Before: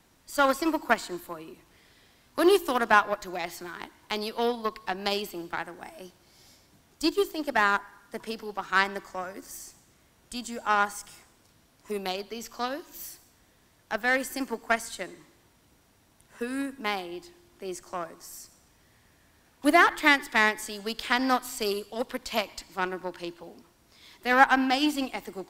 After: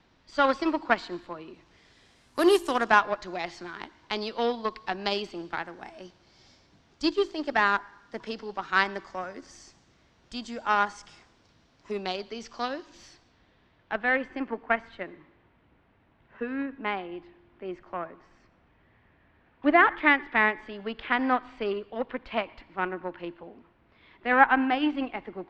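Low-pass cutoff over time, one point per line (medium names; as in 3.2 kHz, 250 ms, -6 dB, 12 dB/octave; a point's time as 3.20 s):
low-pass 24 dB/octave
1.45 s 4.7 kHz
2.49 s 12 kHz
3.07 s 5.5 kHz
12.86 s 5.5 kHz
14.31 s 2.7 kHz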